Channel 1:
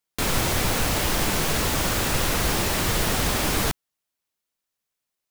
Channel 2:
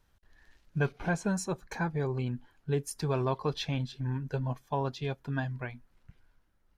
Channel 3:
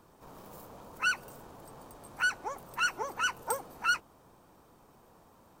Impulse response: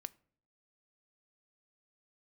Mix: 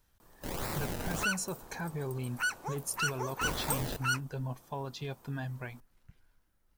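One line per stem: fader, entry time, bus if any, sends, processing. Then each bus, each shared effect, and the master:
-14.0 dB, 0.25 s, muted 1.25–3.41, no send, decimation with a swept rate 27×, swing 100% 1.7 Hz
-2.5 dB, 0.00 s, no send, limiter -26.5 dBFS, peak gain reduction 8.5 dB
-3.0 dB, 0.20 s, no send, dry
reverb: off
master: high shelf 6900 Hz +11 dB; soft clip -20.5 dBFS, distortion -22 dB

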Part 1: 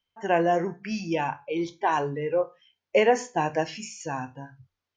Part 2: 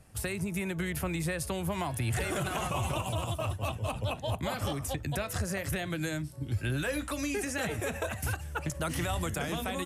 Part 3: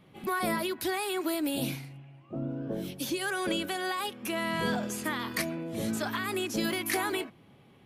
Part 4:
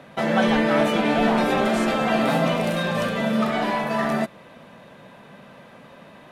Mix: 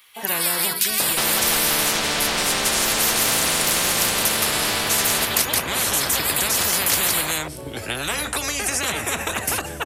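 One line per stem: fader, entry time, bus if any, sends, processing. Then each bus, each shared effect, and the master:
-14.0 dB, 0.00 s, no send, no echo send, dry
-6.0 dB, 1.25 s, no send, no echo send, dry
-0.5 dB, 0.00 s, no send, echo send -7 dB, HPF 1100 Hz 24 dB/oct; differentiator
-2.0 dB, 1.00 s, no send, echo send -10 dB, dry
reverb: off
echo: echo 0.169 s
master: bell 440 Hz +11 dB 1.5 oct; spectral compressor 10:1

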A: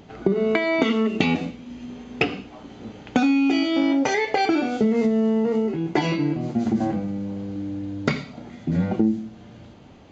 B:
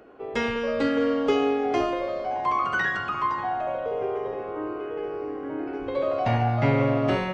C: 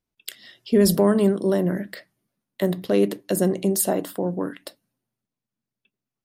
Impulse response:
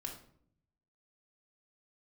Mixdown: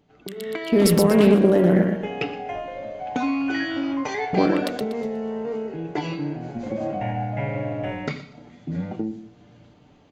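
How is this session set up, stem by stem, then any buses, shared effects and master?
-17.5 dB, 0.00 s, no send, echo send -18.5 dB, comb 6.8 ms, depth 33%
-13.5 dB, 0.75 s, no send, no echo send, bell 12000 Hz -14 dB 1.2 oct; fixed phaser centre 1200 Hz, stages 6
-1.5 dB, 0.00 s, muted 1.84–4.33, send -23.5 dB, echo send -4 dB, Wiener smoothing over 9 samples; limiter -18 dBFS, peak gain reduction 11 dB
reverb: on, RT60 0.60 s, pre-delay 3 ms
echo: feedback echo 0.121 s, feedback 34%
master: AGC gain up to 10.5 dB; Doppler distortion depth 0.13 ms

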